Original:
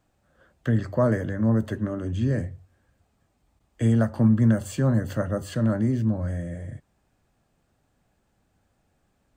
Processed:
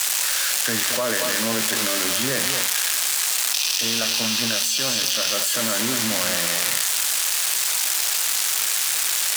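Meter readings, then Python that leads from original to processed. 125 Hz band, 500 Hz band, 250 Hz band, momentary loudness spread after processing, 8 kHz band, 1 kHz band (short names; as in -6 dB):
-16.0 dB, +0.5 dB, -7.0 dB, 1 LU, +30.5 dB, +9.0 dB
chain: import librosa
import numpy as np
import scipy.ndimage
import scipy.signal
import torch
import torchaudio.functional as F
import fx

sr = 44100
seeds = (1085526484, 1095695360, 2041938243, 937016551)

y = x + 0.5 * 10.0 ** (-15.0 / 20.0) * np.diff(np.sign(x), prepend=np.sign(x[:1]))
y = fx.rider(y, sr, range_db=10, speed_s=0.5)
y = fx.spec_box(y, sr, start_s=3.53, length_s=1.81, low_hz=2400.0, high_hz=6400.0, gain_db=10)
y = scipy.signal.sosfilt(scipy.signal.butter(4, 110.0, 'highpass', fs=sr, output='sos'), y)
y = fx.tilt_shelf(y, sr, db=-3.5, hz=730.0)
y = fx.echo_wet_highpass(y, sr, ms=90, feedback_pct=76, hz=1900.0, wet_db=-15.0)
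y = fx.quant_dither(y, sr, seeds[0], bits=6, dither='triangular')
y = fx.weighting(y, sr, curve='A')
y = y + 10.0 ** (-10.5 / 20.0) * np.pad(y, (int(225 * sr / 1000.0), 0))[:len(y)]
y = fx.env_flatten(y, sr, amount_pct=100)
y = y * 10.0 ** (-4.5 / 20.0)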